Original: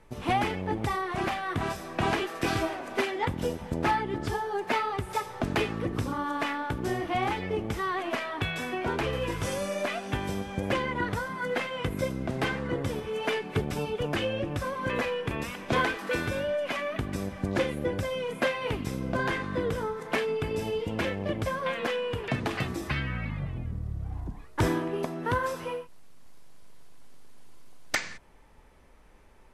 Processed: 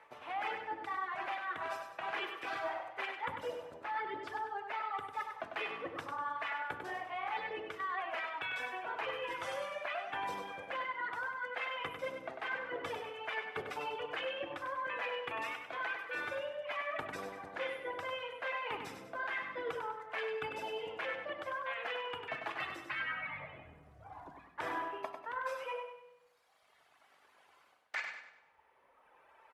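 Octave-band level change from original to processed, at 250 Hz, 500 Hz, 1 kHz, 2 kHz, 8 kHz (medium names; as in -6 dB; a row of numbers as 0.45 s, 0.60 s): -21.5 dB, -11.0 dB, -6.5 dB, -5.5 dB, -17.5 dB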